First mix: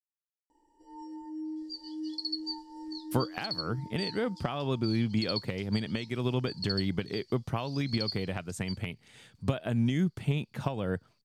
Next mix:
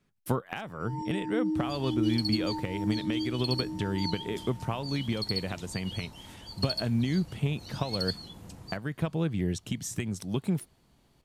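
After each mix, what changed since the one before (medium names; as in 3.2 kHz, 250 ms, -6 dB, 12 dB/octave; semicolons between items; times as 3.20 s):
speech: entry -2.85 s; first sound +8.0 dB; second sound: remove ladder band-pass 5 kHz, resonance 80%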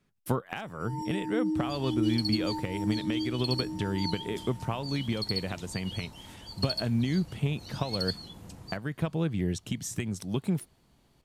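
first sound: remove distance through air 81 m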